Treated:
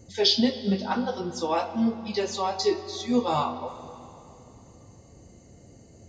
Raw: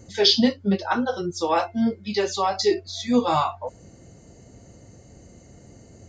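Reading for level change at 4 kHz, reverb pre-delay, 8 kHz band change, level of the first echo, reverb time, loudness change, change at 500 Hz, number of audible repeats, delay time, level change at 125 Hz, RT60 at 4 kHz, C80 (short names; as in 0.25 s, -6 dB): -3.5 dB, 5 ms, -3.5 dB, none, 2.9 s, -3.5 dB, -3.5 dB, none, none, -3.0 dB, 2.6 s, 11.5 dB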